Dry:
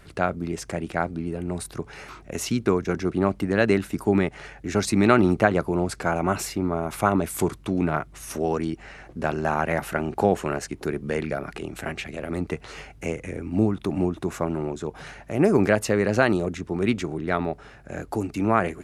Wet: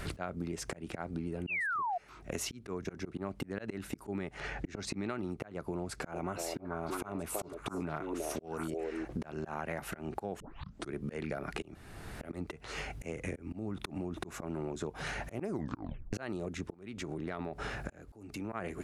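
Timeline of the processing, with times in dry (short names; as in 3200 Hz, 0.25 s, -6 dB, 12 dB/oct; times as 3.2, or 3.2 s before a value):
1.47–1.98 painted sound fall 670–2900 Hz -9 dBFS
4.4–5.09 air absorption 63 m
5.81–9.05 delay with a stepping band-pass 0.324 s, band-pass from 460 Hz, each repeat 1.4 oct, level -1 dB
10.4 tape start 0.52 s
11.75–12.21 room tone
13.48–14.25 compressor, threshold -25 dBFS
15.49 tape stop 0.64 s
16.74–18.53 compressor 5:1, threshold -39 dBFS
whole clip: auto swell 0.759 s; compressor 16:1, threshold -43 dBFS; gain +9.5 dB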